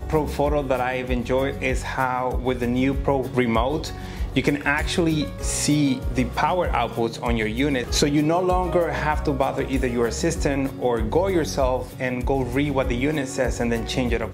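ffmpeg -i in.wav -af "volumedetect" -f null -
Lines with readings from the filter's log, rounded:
mean_volume: -22.4 dB
max_volume: -5.2 dB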